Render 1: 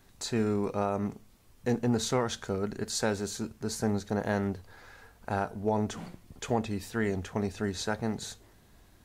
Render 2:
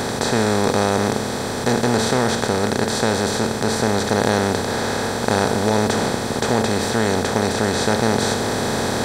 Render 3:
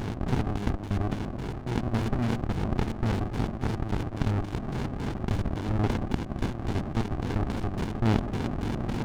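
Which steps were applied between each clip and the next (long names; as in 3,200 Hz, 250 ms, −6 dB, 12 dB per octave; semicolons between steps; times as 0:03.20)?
compressor on every frequency bin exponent 0.2; notch filter 6,700 Hz, Q 9.6; speech leveller 2 s; level +3.5 dB
sub-harmonics by changed cycles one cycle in 2, muted; auto-filter low-pass square 3.6 Hz 420–3,300 Hz; windowed peak hold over 65 samples; level −7.5 dB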